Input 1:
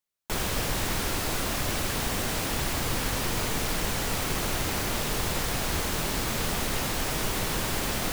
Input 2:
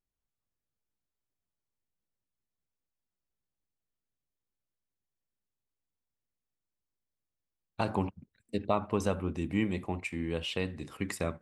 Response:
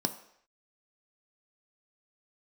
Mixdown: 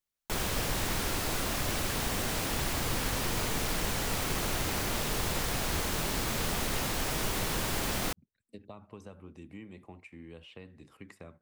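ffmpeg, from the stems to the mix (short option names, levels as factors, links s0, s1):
-filter_complex "[0:a]volume=0.708[s0];[1:a]acrossover=split=210|2800[s1][s2][s3];[s1]acompressor=threshold=0.0112:ratio=4[s4];[s2]acompressor=threshold=0.0178:ratio=4[s5];[s3]acompressor=threshold=0.00224:ratio=4[s6];[s4][s5][s6]amix=inputs=3:normalize=0,volume=0.266[s7];[s0][s7]amix=inputs=2:normalize=0"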